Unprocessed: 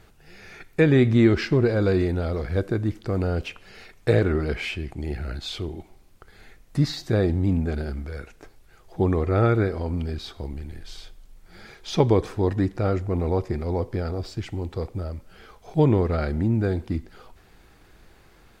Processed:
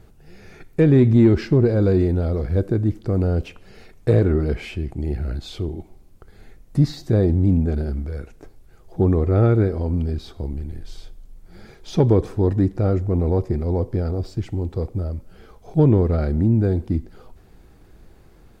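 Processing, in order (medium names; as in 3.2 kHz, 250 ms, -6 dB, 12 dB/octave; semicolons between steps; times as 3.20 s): treble shelf 3.9 kHz +10.5 dB; saturation -9 dBFS, distortion -23 dB; tilt shelf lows +8.5 dB; trim -2.5 dB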